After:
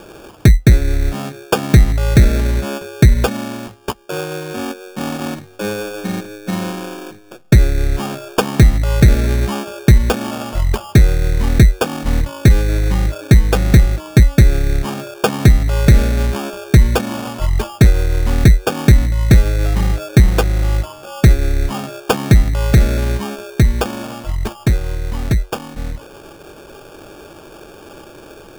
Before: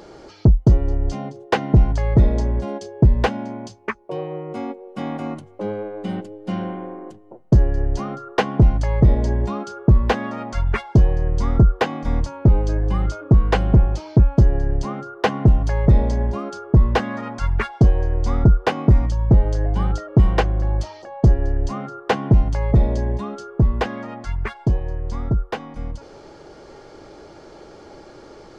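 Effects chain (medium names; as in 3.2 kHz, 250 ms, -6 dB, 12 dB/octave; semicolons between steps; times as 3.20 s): low-pass that closes with the level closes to 720 Hz, closed at -14 dBFS; sample-and-hold 22×; trim +4.5 dB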